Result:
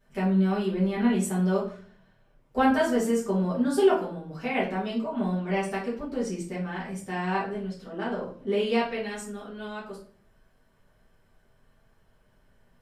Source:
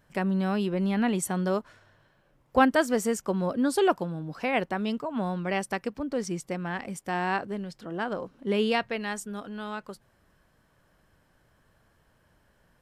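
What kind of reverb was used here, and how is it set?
rectangular room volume 46 cubic metres, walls mixed, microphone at 1.6 metres
level −10 dB

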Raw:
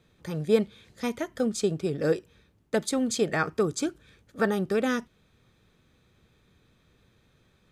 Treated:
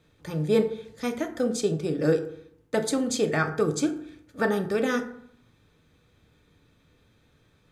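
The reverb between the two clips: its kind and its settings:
feedback delay network reverb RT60 0.67 s, low-frequency decay 1.1×, high-frequency decay 0.5×, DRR 5 dB

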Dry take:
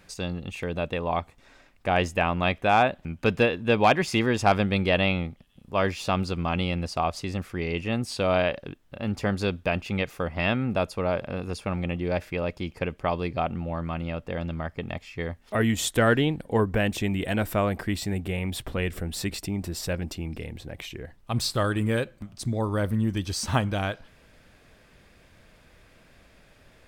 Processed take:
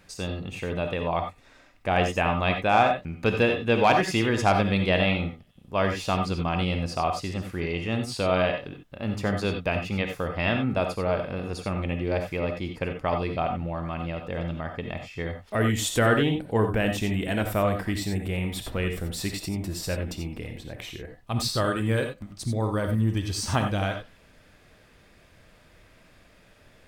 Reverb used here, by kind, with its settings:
reverb whose tail is shaped and stops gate 110 ms rising, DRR 4.5 dB
level −1 dB

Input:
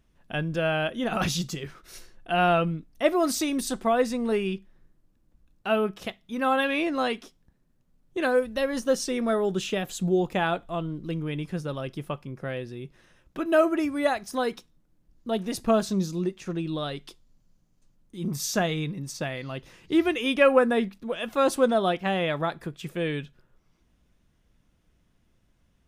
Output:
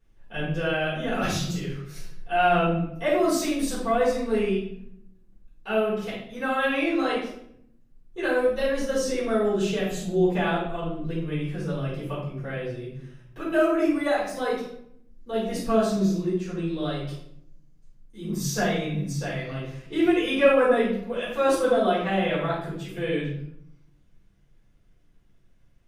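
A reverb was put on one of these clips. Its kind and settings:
rectangular room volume 150 cubic metres, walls mixed, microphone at 4.1 metres
level −12.5 dB

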